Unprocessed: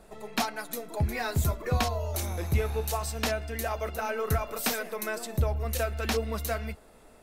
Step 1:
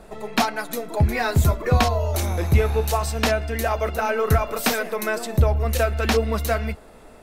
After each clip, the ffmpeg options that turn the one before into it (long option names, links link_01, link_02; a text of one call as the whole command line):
ffmpeg -i in.wav -af "highshelf=frequency=4800:gain=-6,volume=9dB" out.wav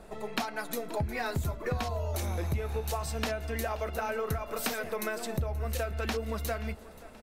ffmpeg -i in.wav -af "acompressor=threshold=-24dB:ratio=6,aecho=1:1:529|1058|1587|2116:0.106|0.053|0.0265|0.0132,volume=-5dB" out.wav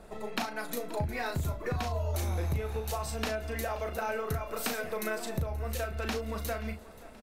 ffmpeg -i in.wav -filter_complex "[0:a]asplit=2[link_01][link_02];[link_02]adelay=37,volume=-7dB[link_03];[link_01][link_03]amix=inputs=2:normalize=0,volume=-1.5dB" out.wav